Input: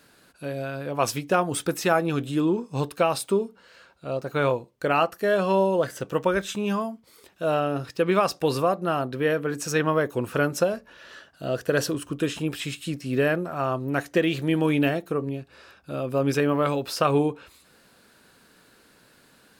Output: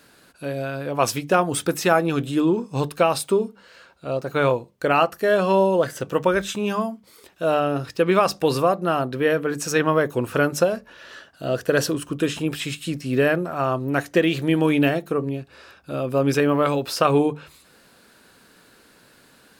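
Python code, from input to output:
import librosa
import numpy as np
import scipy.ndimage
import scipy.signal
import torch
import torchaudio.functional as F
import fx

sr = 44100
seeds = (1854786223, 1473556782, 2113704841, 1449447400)

y = fx.hum_notches(x, sr, base_hz=50, count=4)
y = y * librosa.db_to_amplitude(3.5)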